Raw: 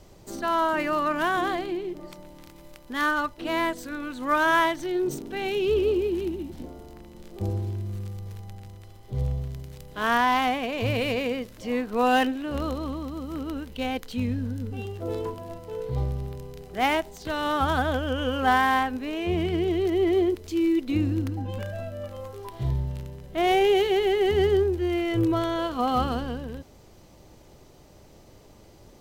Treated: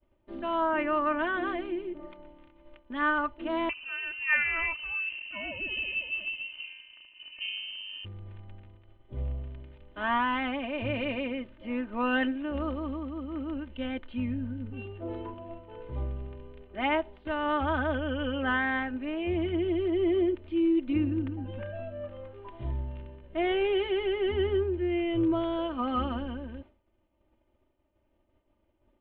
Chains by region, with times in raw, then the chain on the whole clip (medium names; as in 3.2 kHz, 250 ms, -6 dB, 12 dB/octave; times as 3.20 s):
3.69–8.05 s: band-stop 1.6 kHz, Q 10 + frequency inversion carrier 3 kHz
whole clip: steep low-pass 3.2 kHz 48 dB/octave; comb 3.3 ms, depth 74%; expander -38 dBFS; trim -6.5 dB